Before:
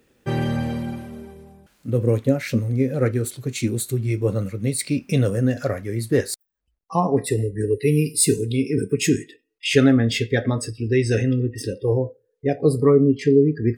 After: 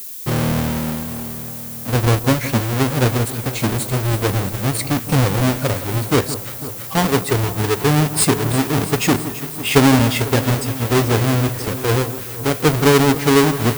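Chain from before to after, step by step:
each half-wave held at its own peak
delay that swaps between a low-pass and a high-pass 166 ms, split 1,300 Hz, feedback 84%, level −12.5 dB
background noise violet −31 dBFS
level −1 dB

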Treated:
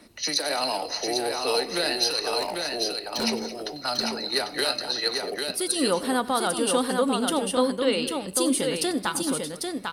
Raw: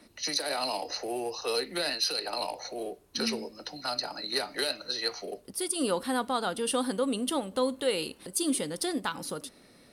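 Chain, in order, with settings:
0:02.38–0:03.24: hard clipping −29.5 dBFS, distortion −25 dB
0:07.54–0:08.28: elliptic low-pass filter 5,300 Hz
multi-tap delay 94/218/797 ms −19.5/−14.5/−4.5 dB
level +4.5 dB

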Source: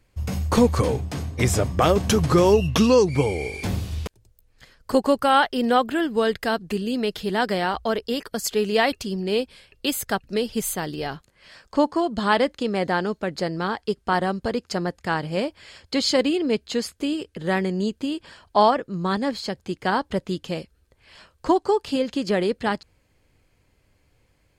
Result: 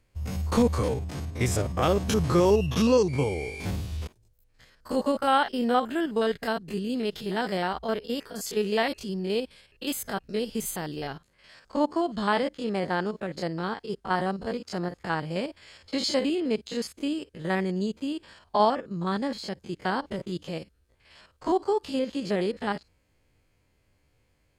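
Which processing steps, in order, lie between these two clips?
spectrum averaged block by block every 50 ms
level −3.5 dB

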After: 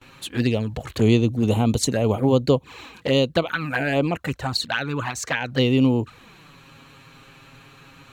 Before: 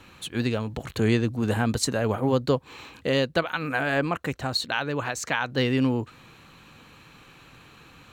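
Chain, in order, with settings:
flanger swept by the level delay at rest 8.7 ms, full sweep at −21 dBFS
noise gate with hold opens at −47 dBFS
level +5.5 dB

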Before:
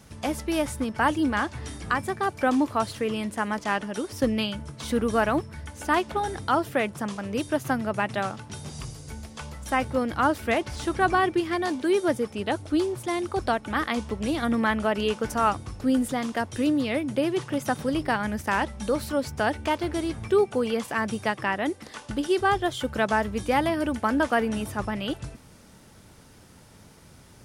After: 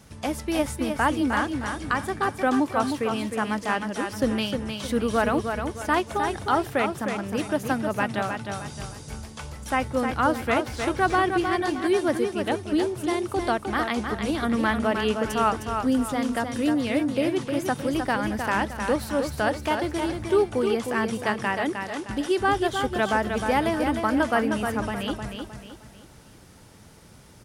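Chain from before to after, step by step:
repeating echo 309 ms, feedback 38%, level −6 dB

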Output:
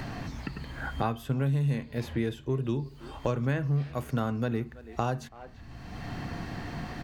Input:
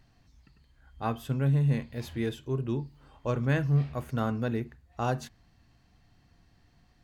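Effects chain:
far-end echo of a speakerphone 330 ms, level −22 dB
multiband upward and downward compressor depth 100%

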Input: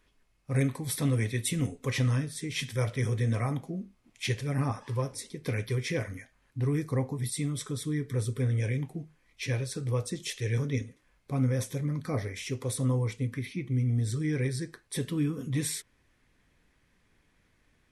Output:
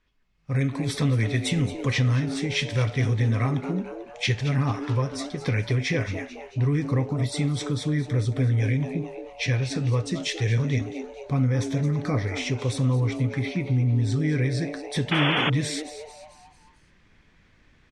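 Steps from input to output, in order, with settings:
Bessel low-pass filter 4,900 Hz, order 4
parametric band 470 Hz −4.5 dB 1.9 octaves
echo with shifted repeats 221 ms, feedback 47%, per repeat +150 Hz, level −13.5 dB
downward compressor 2 to 1, threshold −32 dBFS, peak gain reduction 5.5 dB
sound drawn into the spectrogram noise, 0:15.11–0:15.50, 280–3,500 Hz −34 dBFS
automatic gain control gain up to 12.5 dB
level −2.5 dB

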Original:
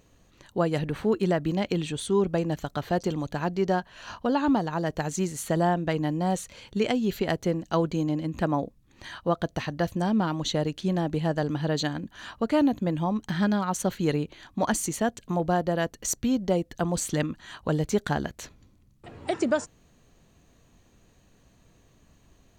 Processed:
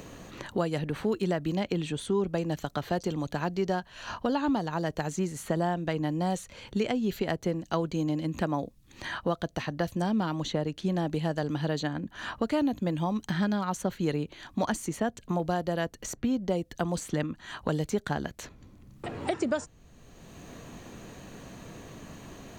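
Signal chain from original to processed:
multiband upward and downward compressor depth 70%
level −3.5 dB

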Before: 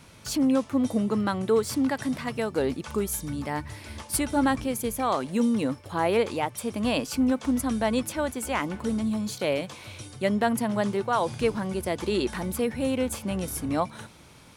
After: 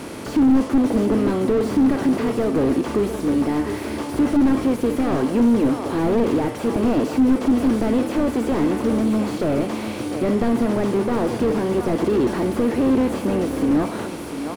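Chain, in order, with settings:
compressor on every frequency bin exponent 0.6
parametric band 320 Hz +9.5 dB 0.9 octaves
single-tap delay 700 ms −12 dB
on a send at −11 dB: convolution reverb RT60 0.65 s, pre-delay 24 ms
on the sum: slew-rate limiting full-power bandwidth 65 Hz

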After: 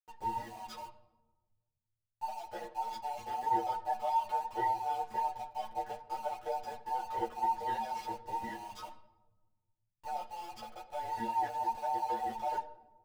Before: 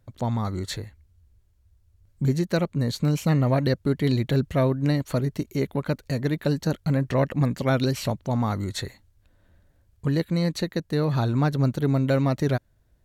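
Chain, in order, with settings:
frequency inversion band by band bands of 1,000 Hz
low-pass filter 3,300 Hz 6 dB per octave
in parallel at −9.5 dB: comparator with hysteresis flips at −37.5 dBFS
on the sum: stiff-string resonator 110 Hz, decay 0.24 s, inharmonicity 0.008
dead-zone distortion −52.5 dBFS
on a send at −12.5 dB: convolution reverb RT60 1.2 s, pre-delay 17 ms
on the sum: string-ensemble chorus
level −4.5 dB

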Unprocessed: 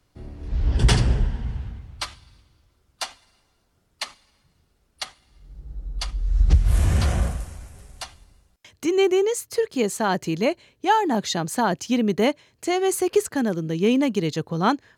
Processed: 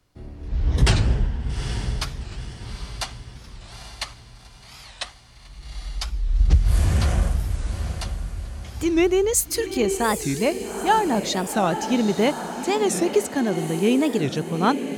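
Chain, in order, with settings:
0:09.33–0:09.77: spectral tilt +3.5 dB per octave
on a send: feedback delay with all-pass diffusion 826 ms, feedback 47%, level −8.5 dB
on the sum: wow of a warped record 45 rpm, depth 250 cents

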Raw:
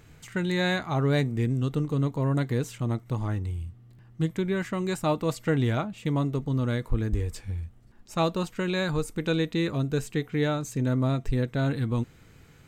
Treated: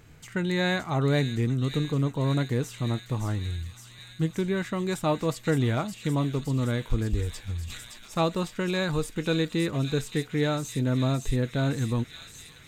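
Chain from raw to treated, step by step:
delay with a high-pass on its return 567 ms, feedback 80%, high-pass 3,400 Hz, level −4 dB
0:07.59–0:08.18: level that may fall only so fast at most 53 dB per second

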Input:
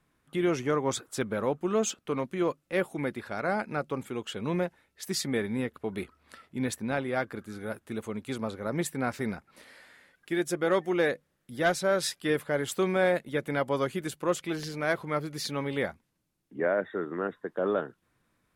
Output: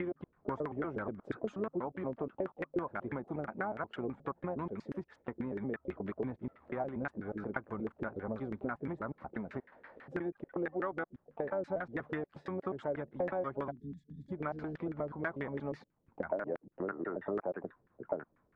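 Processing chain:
slices reordered back to front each 120 ms, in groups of 4
dynamic equaliser 480 Hz, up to −6 dB, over −43 dBFS, Q 3.8
downward compressor 10 to 1, threshold −35 dBFS, peak gain reduction 14.5 dB
time-frequency box erased 0:13.71–0:14.32, 290–3,300 Hz
pitch-shifted copies added −12 semitones −18 dB, +7 semitones −15 dB
auto-filter low-pass saw down 6.1 Hz 380–1,800 Hz
level −1 dB

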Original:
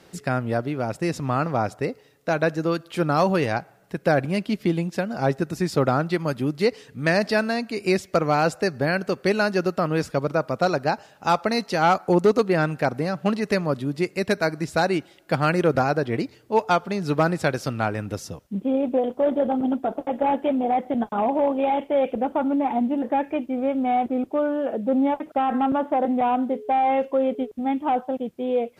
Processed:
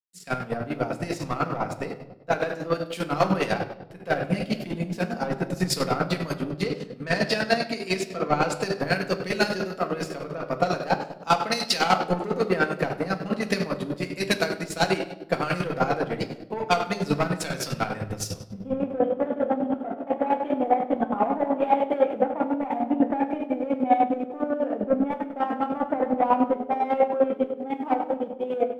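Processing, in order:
noise gate with hold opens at −42 dBFS
leveller curve on the samples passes 1
downward compressor 2.5 to 1, threshold −21 dBFS, peak gain reduction 6 dB
low-shelf EQ 420 Hz −7 dB
delay with a low-pass on its return 233 ms, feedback 54%, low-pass 440 Hz, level −10 dB
convolution reverb RT60 1.6 s, pre-delay 4 ms, DRR 1 dB
square-wave tremolo 10 Hz, depth 60%, duty 35%
0:06.36–0:08.61: high-shelf EQ 6,600 Hz −6 dB
multiband upward and downward expander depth 100%
level +1.5 dB

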